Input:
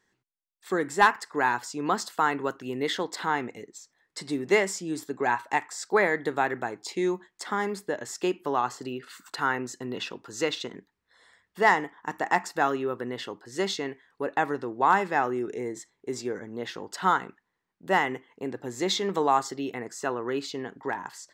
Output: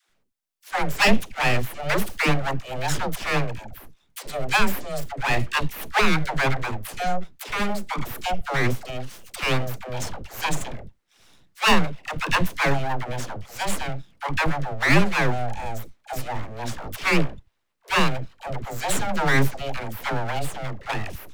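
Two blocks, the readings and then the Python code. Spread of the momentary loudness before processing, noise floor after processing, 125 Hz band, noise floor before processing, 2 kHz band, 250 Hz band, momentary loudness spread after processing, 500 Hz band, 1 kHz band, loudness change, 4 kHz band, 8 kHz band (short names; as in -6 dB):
13 LU, -67 dBFS, +15.0 dB, -80 dBFS, +4.5 dB, +3.5 dB, 14 LU, -0.5 dB, 0.0 dB, +3.0 dB, +6.5 dB, +4.0 dB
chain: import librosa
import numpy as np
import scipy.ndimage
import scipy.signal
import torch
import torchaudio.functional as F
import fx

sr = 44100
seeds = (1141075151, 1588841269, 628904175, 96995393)

y = np.abs(x)
y = fx.dispersion(y, sr, late='lows', ms=96.0, hz=440.0)
y = y * 10.0 ** (6.5 / 20.0)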